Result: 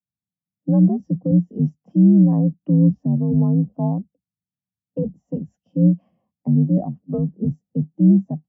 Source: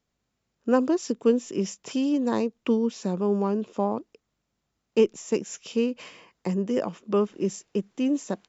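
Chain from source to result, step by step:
sub-octave generator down 1 octave, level −1 dB
spectral tilt −3.5 dB per octave
brickwall limiter −9.5 dBFS, peak gain reduction 9 dB
frequency shifter +54 Hz
loudspeaker in its box 120–6,500 Hz, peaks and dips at 190 Hz +7 dB, 400 Hz −8 dB, 750 Hz +8 dB, 1,300 Hz −6 dB, 2,400 Hz −8 dB, 3,900 Hz −9 dB
every bin expanded away from the loudest bin 1.5 to 1

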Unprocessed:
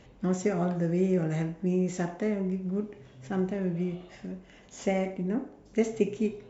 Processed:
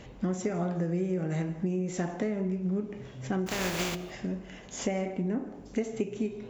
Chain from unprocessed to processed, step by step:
0:03.46–0:03.94: compressing power law on the bin magnitudes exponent 0.36
downward compressor, threshold −34 dBFS, peak gain reduction 14 dB
convolution reverb RT60 0.50 s, pre-delay 146 ms, DRR 17.5 dB
level +6.5 dB

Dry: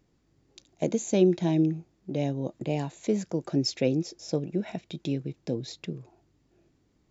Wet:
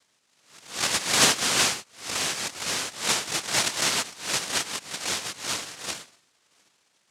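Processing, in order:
peak hold with a rise ahead of every peak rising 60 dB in 0.43 s
cochlear-implant simulation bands 1

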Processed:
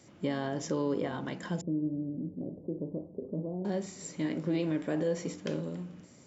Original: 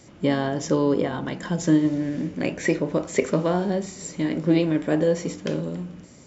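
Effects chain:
high-pass filter 82 Hz
brickwall limiter −14.5 dBFS, peak gain reduction 9 dB
0:01.61–0:03.65: Gaussian smoothing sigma 16 samples
level −7.5 dB

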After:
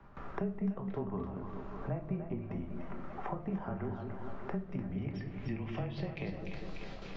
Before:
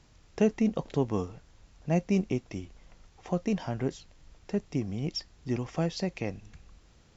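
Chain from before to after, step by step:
noise gate with hold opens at −49 dBFS
treble cut that deepens with the level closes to 2,300 Hz, closed at −25 dBFS
downward compressor 2.5 to 1, threshold −48 dBFS, peak gain reduction 19 dB
low-pass filter sweep 1,300 Hz → 4,300 Hz, 0:04.43–0:06.38
frequency shifter −20 Hz
echo with a time of its own for lows and highs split 540 Hz, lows 199 ms, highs 296 ms, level −7.5 dB
rectangular room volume 380 cubic metres, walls furnished, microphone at 1.2 metres
multiband upward and downward compressor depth 70%
level +2.5 dB

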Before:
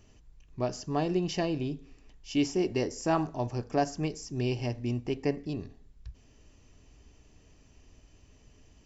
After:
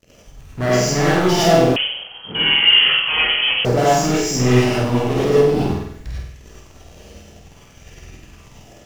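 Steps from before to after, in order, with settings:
leveller curve on the samples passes 5
in parallel at −11 dB: bit reduction 6 bits
on the sum: flutter between parallel walls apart 8.3 metres, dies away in 0.72 s
reverb whose tail is shaped and stops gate 130 ms rising, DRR −6.5 dB
0:01.76–0:03.65: voice inversion scrambler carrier 3,200 Hz
auto-filter bell 0.56 Hz 510–2,100 Hz +7 dB
level −8 dB

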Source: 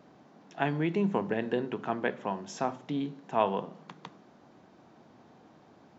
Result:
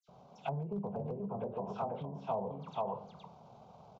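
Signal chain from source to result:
low-shelf EQ 190 Hz +3 dB
all-pass dispersion lows, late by 118 ms, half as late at 2,900 Hz
on a send: single-tap delay 701 ms −5 dB
on the sum: rectangular room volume 96 cubic metres, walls mixed, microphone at 0.33 metres
treble cut that deepens with the level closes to 540 Hz, closed at −24.5 dBFS
downward compressor 3 to 1, threshold −33 dBFS, peak gain reduction 9.5 dB
hard clipping −26.5 dBFS, distortion −29 dB
high-shelf EQ 5,000 Hz −8.5 dB
phaser with its sweep stopped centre 740 Hz, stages 4
tempo change 1.5×
level +2.5 dB

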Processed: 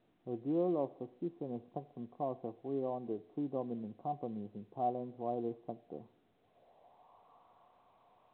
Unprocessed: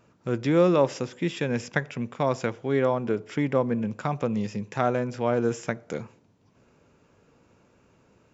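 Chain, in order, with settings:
formant resonators in series a
low-pass filter sweep 330 Hz → 2,500 Hz, 0:06.16–0:07.95
level +8 dB
mu-law 64 kbit/s 8,000 Hz

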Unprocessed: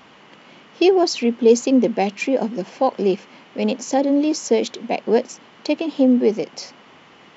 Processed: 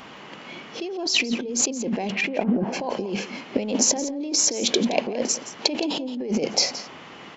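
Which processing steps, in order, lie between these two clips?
0:02.11–0:02.72: low-pass filter 2,900 Hz → 1,400 Hz 12 dB per octave
noise reduction from a noise print of the clip's start 8 dB
brickwall limiter −13 dBFS, peak gain reduction 9.5 dB
compressor whose output falls as the input rises −31 dBFS, ratio −1
single-tap delay 170 ms −14.5 dB
level +5.5 dB

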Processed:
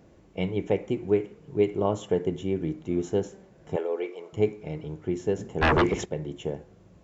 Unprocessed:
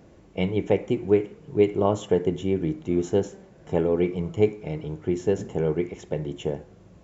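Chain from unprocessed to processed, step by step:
0:03.76–0:04.33: high-pass filter 410 Hz 24 dB per octave
0:05.61–0:06.04: sine wavefolder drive 15 dB → 10 dB, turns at −13 dBFS
level −3.5 dB

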